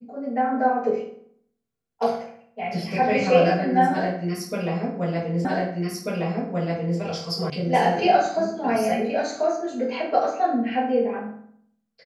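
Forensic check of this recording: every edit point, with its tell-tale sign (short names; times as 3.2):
5.45 repeat of the last 1.54 s
7.5 sound cut off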